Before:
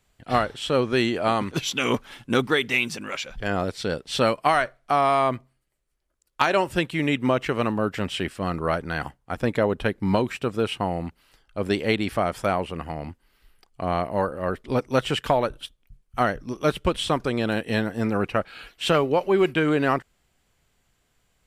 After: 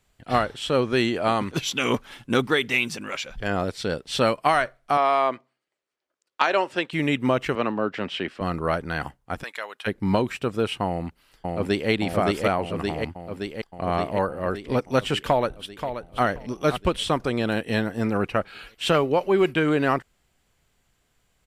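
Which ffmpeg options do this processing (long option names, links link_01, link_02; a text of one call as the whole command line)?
ffmpeg -i in.wav -filter_complex "[0:a]asettb=1/sr,asplit=3[link_01][link_02][link_03];[link_01]atrim=end=4.974[link_04];[link_02]atrim=start=4.97:end=6.93,asetpts=PTS-STARTPTS,afade=type=in:duration=0.004:curve=qsin,afade=type=out:start_time=1.956:duration=0.004:curve=qsin,highpass=340,lowpass=5500[link_05];[link_03]atrim=start=6.926[link_06];[link_04][link_05]acrossfade=duration=0.004:curve1=hsin:curve2=qsin[link_07];[link_07][link_06]acrossfade=duration=0.004:curve1=qsin:curve2=hsin,asettb=1/sr,asplit=3[link_08][link_09][link_10];[link_08]atrim=end=7.554[link_11];[link_09]atrim=start=7.55:end=8.41,asetpts=PTS-STARTPTS,afade=type=in:duration=0.004:curve=qsin,afade=type=out:start_time=0.856:duration=0.004:curve=qsin,acrossover=split=180 5200:gain=0.224 1 0.0891[link_12][link_13][link_14];[link_12][link_13][link_14]amix=inputs=3:normalize=0[link_15];[link_10]atrim=start=8.406[link_16];[link_11][link_15]acrossfade=duration=0.004:curve1=hsin:curve2=qsin[link_17];[link_17][link_16]acrossfade=duration=0.004:curve1=qsin:curve2=hsin,asplit=3[link_18][link_19][link_20];[link_18]afade=type=out:start_time=9.42:duration=0.02[link_21];[link_19]highpass=1400,afade=type=in:start_time=9.42:duration=0.02,afade=type=out:start_time=9.86:duration=0.02[link_22];[link_20]afade=type=in:start_time=9.86:duration=0.02[link_23];[link_21][link_22][link_23]amix=inputs=3:normalize=0,asplit=2[link_24][link_25];[link_25]afade=type=in:start_time=10.87:duration=0.01,afade=type=out:start_time=11.9:duration=0.01,aecho=0:1:570|1140|1710|2280|2850|3420|3990|4560|5130|5700|6270|6840:0.841395|0.588977|0.412284|0.288599|0.202019|0.141413|0.0989893|0.0692925|0.0485048|0.0339533|0.0237673|0.0166371[link_26];[link_24][link_26]amix=inputs=2:normalize=0,asplit=2[link_27][link_28];[link_28]afade=type=in:start_time=15.23:duration=0.01,afade=type=out:start_time=16.23:duration=0.01,aecho=0:1:530|1060:0.354813|0.053222[link_29];[link_27][link_29]amix=inputs=2:normalize=0" out.wav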